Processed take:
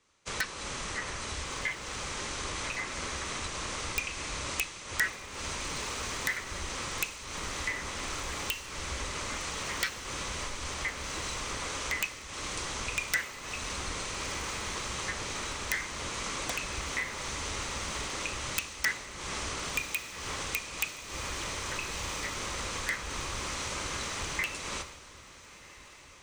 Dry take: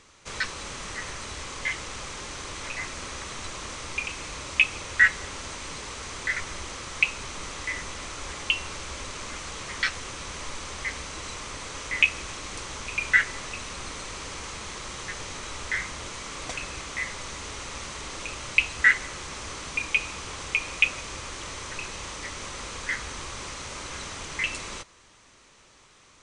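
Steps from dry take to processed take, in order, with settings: compressor 12:1, threshold -35 dBFS, peak gain reduction 22.5 dB; added harmonics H 3 -15 dB, 5 -36 dB, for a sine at -17 dBFS; wrapped overs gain 29 dB; diffused feedback echo 1.373 s, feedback 66%, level -10 dB; three-band expander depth 100%; gain +8.5 dB

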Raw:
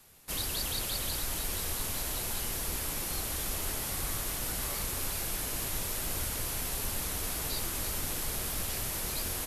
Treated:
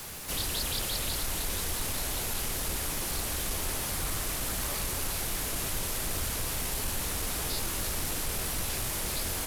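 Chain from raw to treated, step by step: zero-crossing step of -35 dBFS; Doppler distortion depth 0.48 ms

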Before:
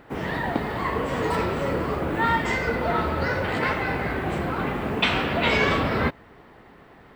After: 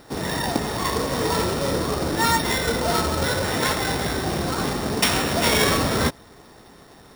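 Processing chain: sample sorter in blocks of 8 samples; careless resampling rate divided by 3×, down none, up hold; gain +2 dB

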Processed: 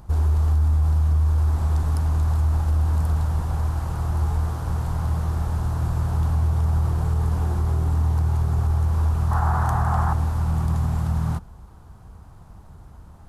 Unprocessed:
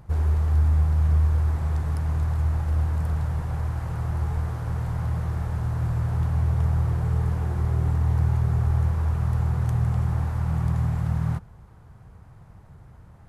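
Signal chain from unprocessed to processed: ten-band EQ 125 Hz -10 dB, 500 Hz -6 dB, 2000 Hz -10 dB; limiter -22 dBFS, peak gain reduction 5.5 dB; 9.31–10.13 band shelf 1100 Hz +12.5 dB; gain +8 dB

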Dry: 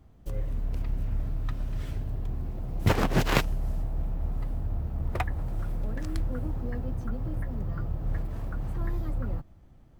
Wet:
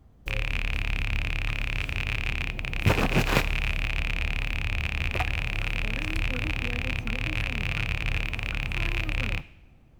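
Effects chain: rattling part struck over -30 dBFS, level -15 dBFS; two-slope reverb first 0.68 s, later 1.9 s, from -18 dB, DRR 14 dB

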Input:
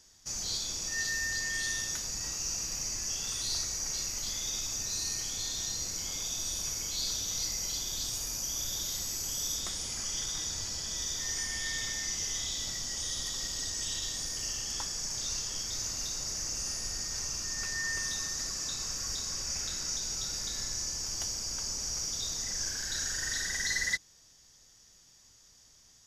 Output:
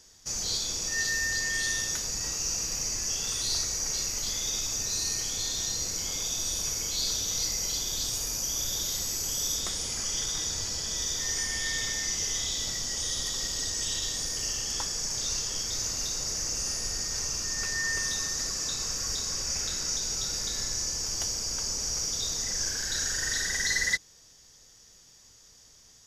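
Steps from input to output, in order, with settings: bell 460 Hz +4.5 dB 0.44 oct; gain +4 dB

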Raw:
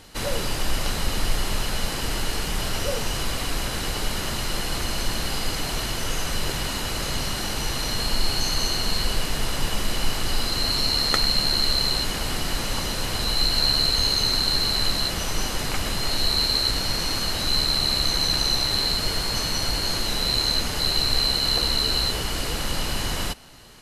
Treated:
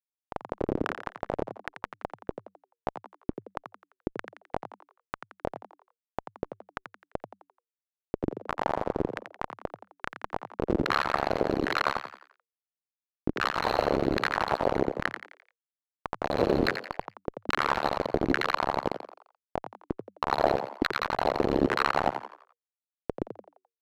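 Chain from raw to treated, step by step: notch 720 Hz, Q 12; spectral gain 7.24–8.47, 1800–12000 Hz -7 dB; ten-band EQ 250 Hz -10 dB, 2000 Hz +8 dB, 4000 Hz +5 dB, 8000 Hz +4 dB; in parallel at -2.5 dB: vocal rider within 5 dB 2 s; on the sum: Schmitt trigger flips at -4.5 dBFS; LFO band-pass saw down 1.2 Hz 280–1700 Hz; on a send: frequency-shifting echo 86 ms, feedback 41%, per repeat +91 Hz, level -8.5 dB; on the sum: gain +5 dB

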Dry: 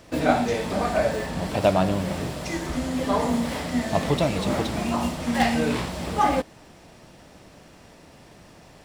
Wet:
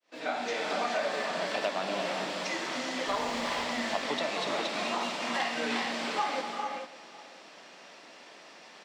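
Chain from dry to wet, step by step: opening faded in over 0.63 s; Bessel high-pass 290 Hz, order 8; tilt +3.5 dB/oct; compressor, threshold -27 dBFS, peak gain reduction 11 dB; 3.08–3.64 requantised 6-bit, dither triangular; air absorption 160 m; outdoor echo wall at 95 m, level -18 dB; reverb, pre-delay 3 ms, DRR 3 dB

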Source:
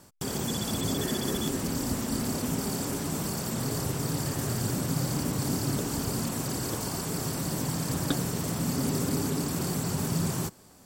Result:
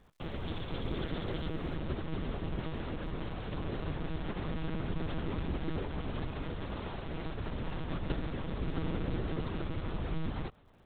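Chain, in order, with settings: self-modulated delay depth 0.44 ms; monotone LPC vocoder at 8 kHz 160 Hz; crackle 390/s -58 dBFS, from 1.76 s 50/s; gain -4.5 dB

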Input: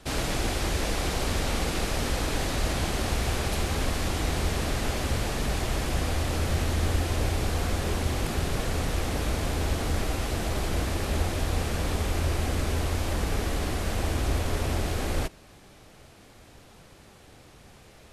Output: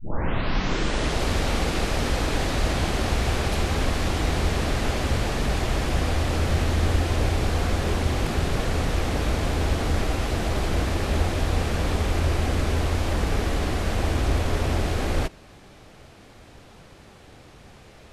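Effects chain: tape start at the beginning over 1.25 s; high shelf 8200 Hz -10.5 dB; gain +4 dB

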